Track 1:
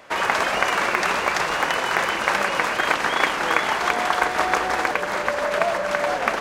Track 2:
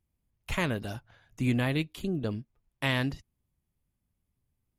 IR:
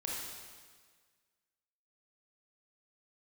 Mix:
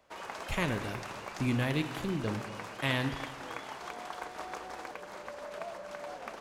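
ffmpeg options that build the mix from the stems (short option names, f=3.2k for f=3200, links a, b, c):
-filter_complex "[0:a]equalizer=f=1.8k:t=o:w=1.3:g=-6,volume=-18dB[a];[1:a]volume=-5dB,asplit=2[b][c];[c]volume=-7dB[d];[2:a]atrim=start_sample=2205[e];[d][e]afir=irnorm=-1:irlink=0[f];[a][b][f]amix=inputs=3:normalize=0"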